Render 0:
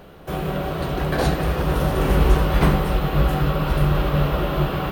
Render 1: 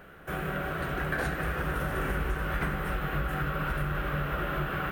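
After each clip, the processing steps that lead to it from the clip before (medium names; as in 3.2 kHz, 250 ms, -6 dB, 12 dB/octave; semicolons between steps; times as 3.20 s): FFT filter 1 kHz 0 dB, 1.5 kHz +13 dB, 4.4 kHz -5 dB, 8.4 kHz +3 dB; compression, threshold -18 dBFS, peak gain reduction 9 dB; trim -8.5 dB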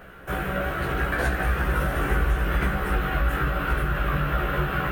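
chorus voices 4, 0.41 Hz, delay 16 ms, depth 1.6 ms; trim +8.5 dB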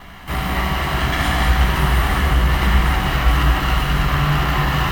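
comb filter that takes the minimum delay 1 ms; reverse; upward compressor, threshold -36 dBFS; reverse; gated-style reverb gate 250 ms flat, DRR -1.5 dB; trim +5 dB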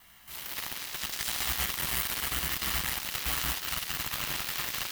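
Chebyshev shaper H 7 -12 dB, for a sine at -4 dBFS; short-mantissa float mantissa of 2-bit; pre-emphasis filter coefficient 0.9; trim -4 dB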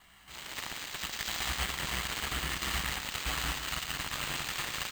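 delay 115 ms -9.5 dB; careless resampling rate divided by 4×, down filtered, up hold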